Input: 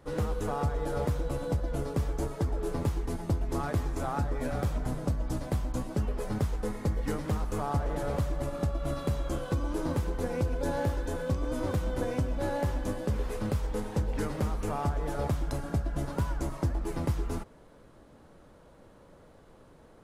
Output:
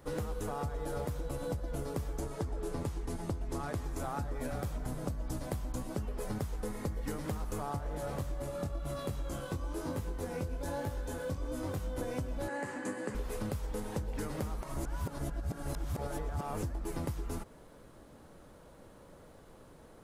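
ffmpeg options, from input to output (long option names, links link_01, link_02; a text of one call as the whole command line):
ffmpeg -i in.wav -filter_complex "[0:a]asettb=1/sr,asplit=3[link_01][link_02][link_03];[link_01]atrim=end=2.214[link_04];[link_02]atrim=start=2.21:end=3.84,asetpts=PTS-STARTPTS,afade=type=in:duration=0.004:curve=qsin,afade=type=out:start_time=1.626:duration=0.004:curve=qsin,lowpass=11000[link_05];[link_03]atrim=start=3.836[link_06];[link_04][link_05]acrossfade=duration=0.004:curve1=hsin:curve2=qsin[link_07];[link_07][link_06]acrossfade=duration=0.004:curve1=qsin:curve2=hsin,asplit=3[link_08][link_09][link_10];[link_08]afade=type=out:start_time=7.76:duration=0.02[link_11];[link_09]flanger=delay=19.5:depth=3.7:speed=1,afade=type=in:start_time=7.76:duration=0.02,afade=type=out:start_time=11.97:duration=0.02[link_12];[link_10]afade=type=in:start_time=11.97:duration=0.02[link_13];[link_11][link_12][link_13]amix=inputs=3:normalize=0,asettb=1/sr,asplit=3[link_14][link_15][link_16];[link_14]atrim=end=12.484[link_17];[link_15]atrim=start=12.48:end=13.15,asetpts=PTS-STARTPTS,afade=type=in:duration=0.004:curve=qsin,afade=type=out:start_time=0.666:duration=0.004:curve=qsin,highpass=frequency=160:width=0.5412,highpass=frequency=160:width=1.3066,equalizer=frequency=170:width_type=q:width=4:gain=-7,equalizer=frequency=630:width_type=q:width=4:gain=-7,equalizer=frequency=1800:width_type=q:width=4:gain=9,equalizer=frequency=3500:width_type=q:width=4:gain=-10,equalizer=frequency=5500:width_type=q:width=4:gain=-9,equalizer=frequency=7800:width_type=q:width=4:gain=3,lowpass=frequency=9200:width=0.5412,lowpass=frequency=9200:width=1.3066[link_18];[link_16]atrim=start=13.146[link_19];[link_17][link_18]acrossfade=duration=0.004:curve1=hsin:curve2=qsin[link_20];[link_20][link_19]acrossfade=duration=0.004:curve1=qsin:curve2=hsin,asplit=3[link_21][link_22][link_23];[link_21]atrim=end=14.632[link_24];[link_22]atrim=start=14.628:end=16.632,asetpts=PTS-STARTPTS,areverse[link_25];[link_23]atrim=start=16.628[link_26];[link_24][link_25]acrossfade=duration=0.004:curve1=hsin:curve2=hsin[link_27];[link_27][link_26]acrossfade=duration=0.004:curve1=hsin:curve2=hsin,highshelf=frequency=7800:gain=9,acompressor=threshold=-33dB:ratio=6" out.wav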